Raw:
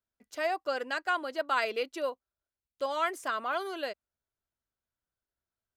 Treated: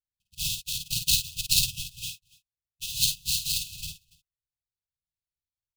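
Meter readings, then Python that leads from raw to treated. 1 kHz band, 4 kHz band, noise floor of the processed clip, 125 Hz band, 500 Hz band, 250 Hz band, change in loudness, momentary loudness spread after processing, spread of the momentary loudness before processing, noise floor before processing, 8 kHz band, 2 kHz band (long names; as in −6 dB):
below −40 dB, +15.0 dB, below −85 dBFS, can't be measured, below −40 dB, −6.0 dB, +6.0 dB, 15 LU, 9 LU, below −85 dBFS, +24.5 dB, −6.5 dB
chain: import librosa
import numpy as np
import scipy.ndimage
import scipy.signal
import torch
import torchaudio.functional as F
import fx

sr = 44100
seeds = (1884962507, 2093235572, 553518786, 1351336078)

y = fx.peak_eq(x, sr, hz=1700.0, db=6.0, octaves=1.4)
y = fx.sample_hold(y, sr, seeds[0], rate_hz=2900.0, jitter_pct=20)
y = fx.brickwall_bandstop(y, sr, low_hz=170.0, high_hz=2500.0)
y = fx.echo_multitap(y, sr, ms=(52, 286), db=(-4.0, -15.5))
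y = fx.upward_expand(y, sr, threshold_db=-59.0, expansion=1.5)
y = F.gain(torch.from_numpy(y), 9.0).numpy()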